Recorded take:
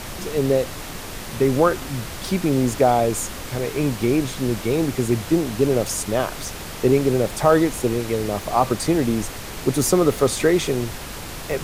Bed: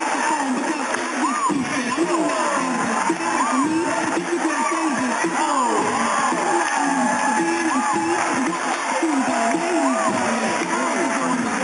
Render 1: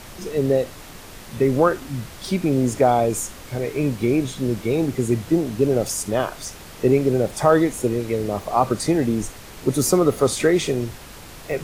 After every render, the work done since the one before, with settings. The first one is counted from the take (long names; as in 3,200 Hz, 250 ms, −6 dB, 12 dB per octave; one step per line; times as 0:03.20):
noise reduction from a noise print 7 dB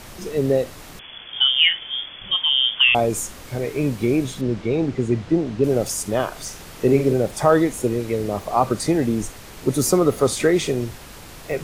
0:00.99–0:02.95: voice inversion scrambler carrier 3,400 Hz
0:04.41–0:05.64: high-frequency loss of the air 110 metres
0:06.31–0:07.13: flutter between parallel walls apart 7.6 metres, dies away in 0.32 s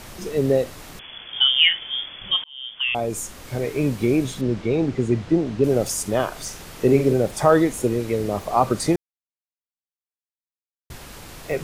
0:02.44–0:03.55: fade in
0:08.96–0:10.90: silence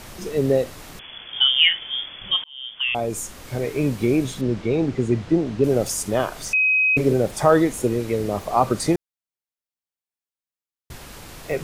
0:06.53–0:06.97: beep over 2,530 Hz −15 dBFS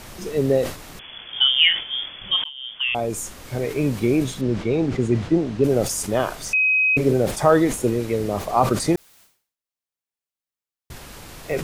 level that may fall only so fast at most 120 dB per second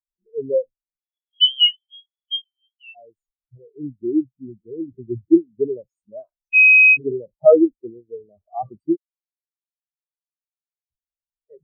in parallel at −1 dB: downward compressor, threshold −27 dBFS, peak gain reduction 15.5 dB
on the sum: every bin expanded away from the loudest bin 4 to 1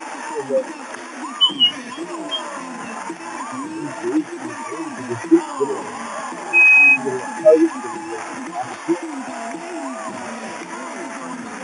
mix in bed −9 dB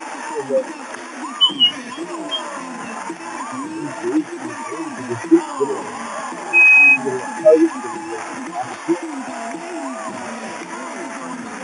level +1 dB
brickwall limiter −2 dBFS, peak gain reduction 1 dB